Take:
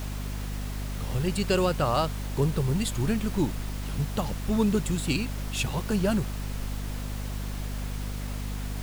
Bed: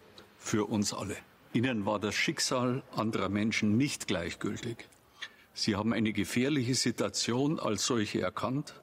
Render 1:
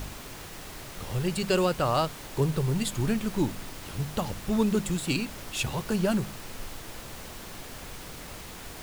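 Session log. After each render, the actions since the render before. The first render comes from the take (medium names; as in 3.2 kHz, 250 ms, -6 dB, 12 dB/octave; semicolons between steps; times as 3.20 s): de-hum 50 Hz, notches 5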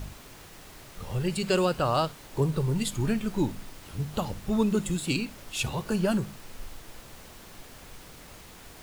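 noise print and reduce 6 dB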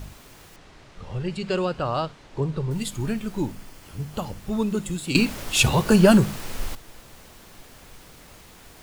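0.56–2.71 s: distance through air 100 m; 3.40–4.40 s: band-stop 3.8 kHz; 5.15–6.75 s: gain +11.5 dB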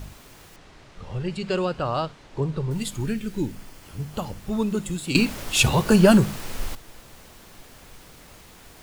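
3.04–3.53 s: high-order bell 850 Hz -8.5 dB 1.3 oct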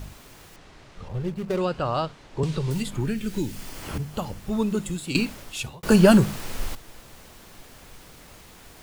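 1.08–1.61 s: median filter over 25 samples; 2.43–3.98 s: three bands compressed up and down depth 100%; 4.82–5.83 s: fade out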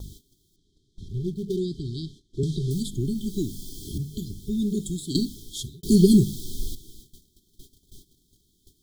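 FFT band-reject 420–3100 Hz; gate -45 dBFS, range -17 dB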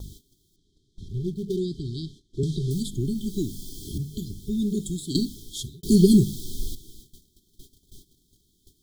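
no audible change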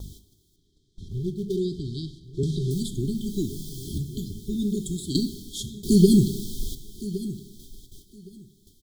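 feedback delay 1115 ms, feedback 18%, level -15 dB; plate-style reverb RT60 1.1 s, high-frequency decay 0.9×, DRR 12 dB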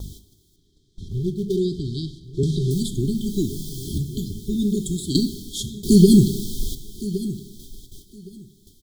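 trim +4.5 dB; peak limiter -1 dBFS, peak gain reduction 2 dB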